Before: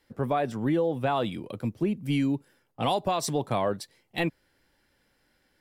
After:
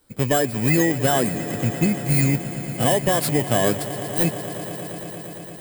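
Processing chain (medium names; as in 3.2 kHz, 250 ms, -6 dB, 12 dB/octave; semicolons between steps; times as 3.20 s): bit-reversed sample order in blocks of 16 samples; formant shift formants -3 st; echo with a slow build-up 115 ms, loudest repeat 5, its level -17.5 dB; trim +7 dB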